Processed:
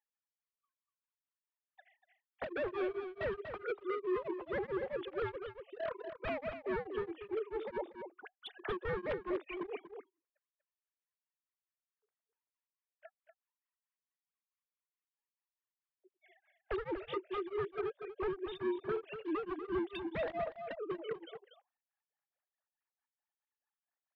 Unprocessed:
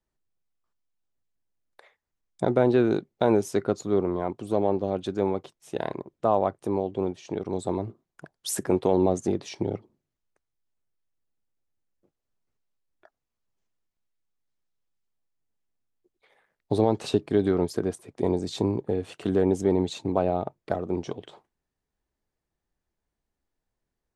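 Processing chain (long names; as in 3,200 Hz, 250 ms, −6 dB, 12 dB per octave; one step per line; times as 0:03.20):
three sine waves on the formant tracks
high-pass filter 1,400 Hz 6 dB per octave
downward compressor 10 to 1, threshold −34 dBFS, peak gain reduction 9 dB
wave folding −37 dBFS
high-frequency loss of the air 400 metres
on a send: single-tap delay 241 ms −8.5 dB
on the sum: tremolo along a rectified sine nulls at 4.6 Hz
level +8.5 dB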